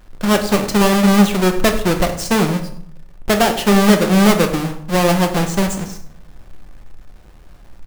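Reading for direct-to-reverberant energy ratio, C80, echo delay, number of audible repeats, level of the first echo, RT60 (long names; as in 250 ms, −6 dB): 4.0 dB, 12.5 dB, 99 ms, 1, −16.0 dB, 0.65 s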